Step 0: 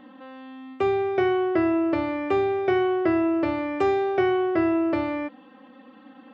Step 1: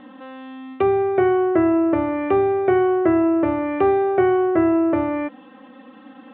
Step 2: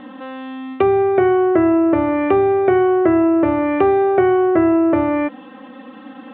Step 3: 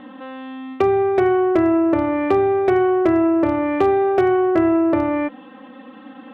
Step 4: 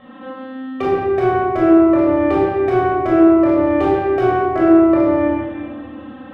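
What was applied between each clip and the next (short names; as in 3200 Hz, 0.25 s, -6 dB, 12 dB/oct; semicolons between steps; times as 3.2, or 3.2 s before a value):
steep low-pass 4000 Hz 72 dB/oct; treble ducked by the level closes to 1600 Hz, closed at -22.5 dBFS; gain +5 dB
compressor 2:1, threshold -20 dBFS, peak gain reduction 4.5 dB; gain +6.5 dB
added harmonics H 3 -22 dB, 7 -45 dB, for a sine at -1.5 dBFS; hard clip -8 dBFS, distortion -26 dB
reverb RT60 1.5 s, pre-delay 18 ms, DRR -7 dB; gain -7.5 dB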